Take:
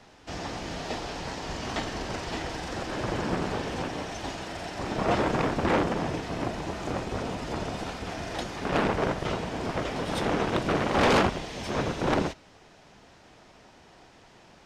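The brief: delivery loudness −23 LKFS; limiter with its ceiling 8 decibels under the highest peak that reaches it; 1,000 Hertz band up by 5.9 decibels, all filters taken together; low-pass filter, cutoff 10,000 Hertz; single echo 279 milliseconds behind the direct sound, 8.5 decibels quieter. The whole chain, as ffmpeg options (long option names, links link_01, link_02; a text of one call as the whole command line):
ffmpeg -i in.wav -af "lowpass=10000,equalizer=frequency=1000:width_type=o:gain=7.5,alimiter=limit=-15.5dB:level=0:latency=1,aecho=1:1:279:0.376,volume=5dB" out.wav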